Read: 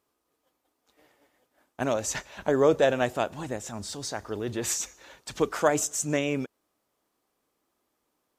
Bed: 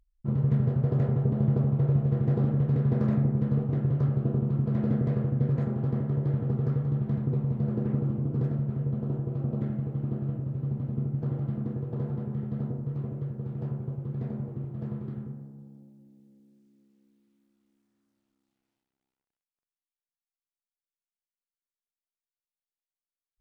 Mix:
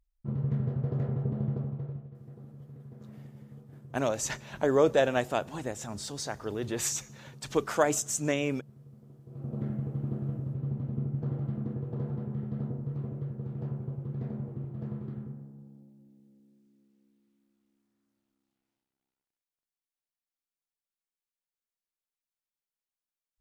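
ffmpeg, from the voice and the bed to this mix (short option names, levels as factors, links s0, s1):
-filter_complex "[0:a]adelay=2150,volume=0.794[s0];[1:a]volume=5.62,afade=t=out:st=1.35:d=0.75:silence=0.133352,afade=t=in:st=9.24:d=0.44:silence=0.0944061[s1];[s0][s1]amix=inputs=2:normalize=0"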